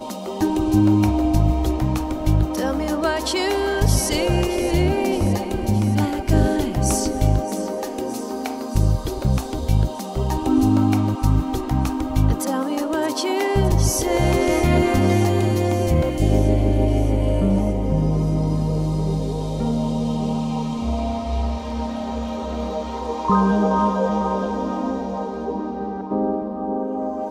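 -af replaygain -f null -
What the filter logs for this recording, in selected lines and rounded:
track_gain = +3.2 dB
track_peak = 0.367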